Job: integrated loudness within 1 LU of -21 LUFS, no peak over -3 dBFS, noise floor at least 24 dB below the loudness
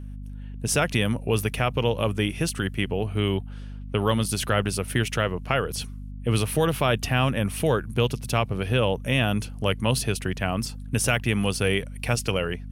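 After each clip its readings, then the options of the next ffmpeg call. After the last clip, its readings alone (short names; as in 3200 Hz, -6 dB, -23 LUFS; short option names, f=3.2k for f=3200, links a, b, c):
hum 50 Hz; harmonics up to 250 Hz; hum level -33 dBFS; loudness -25.0 LUFS; peak -6.5 dBFS; loudness target -21.0 LUFS
-> -af "bandreject=f=50:t=h:w=6,bandreject=f=100:t=h:w=6,bandreject=f=150:t=h:w=6,bandreject=f=200:t=h:w=6,bandreject=f=250:t=h:w=6"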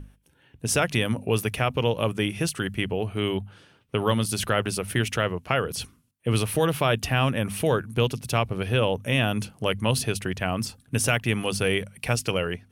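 hum none; loudness -25.5 LUFS; peak -6.5 dBFS; loudness target -21.0 LUFS
-> -af "volume=4.5dB,alimiter=limit=-3dB:level=0:latency=1"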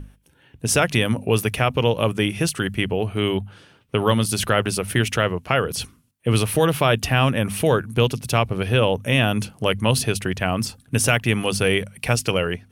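loudness -21.0 LUFS; peak -3.0 dBFS; noise floor -58 dBFS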